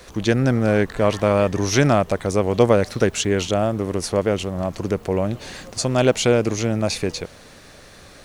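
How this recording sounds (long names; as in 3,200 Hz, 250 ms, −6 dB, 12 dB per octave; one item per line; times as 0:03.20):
background noise floor −45 dBFS
spectral slope −5.5 dB per octave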